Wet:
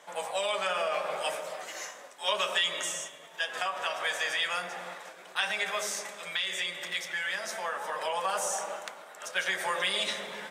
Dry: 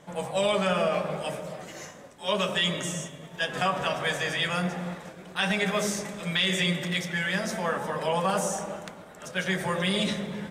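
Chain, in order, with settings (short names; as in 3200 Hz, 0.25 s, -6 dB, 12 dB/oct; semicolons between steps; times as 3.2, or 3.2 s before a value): compressor, threshold -26 dBFS, peak gain reduction 5.5 dB; HPF 700 Hz 12 dB/oct; vocal rider 2 s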